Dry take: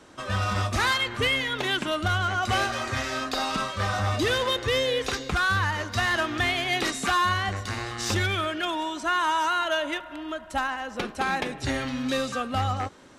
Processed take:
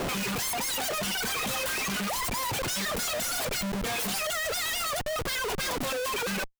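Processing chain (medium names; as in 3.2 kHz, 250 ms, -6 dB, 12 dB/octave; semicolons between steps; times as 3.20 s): self-modulated delay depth 0.43 ms; time-frequency box 7.21–7.69 s, 260–10000 Hz -25 dB; speed mistake 7.5 ips tape played at 15 ips; on a send at -18 dB: reverberation RT60 0.90 s, pre-delay 118 ms; on the sum: reverb removal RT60 1.4 s; in parallel at -9 dB: wavefolder -31.5 dBFS; on the sum: reverb removal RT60 0.6 s; Schmitt trigger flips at -46 dBFS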